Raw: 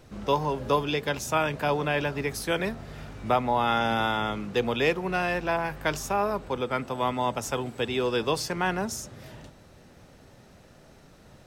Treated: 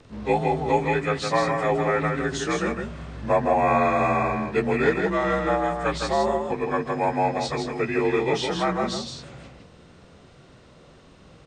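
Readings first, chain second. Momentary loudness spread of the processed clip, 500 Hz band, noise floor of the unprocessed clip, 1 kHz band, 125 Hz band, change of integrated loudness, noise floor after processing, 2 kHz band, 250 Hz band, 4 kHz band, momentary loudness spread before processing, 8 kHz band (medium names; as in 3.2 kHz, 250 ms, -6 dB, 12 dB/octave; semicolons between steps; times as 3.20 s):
7 LU, +5.0 dB, -54 dBFS, +3.5 dB, +3.5 dB, +3.5 dB, -51 dBFS, +2.0 dB, +4.5 dB, -1.0 dB, 7 LU, -1.5 dB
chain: frequency axis rescaled in octaves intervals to 87%; on a send: delay 161 ms -4.5 dB; on the sum: trim +4 dB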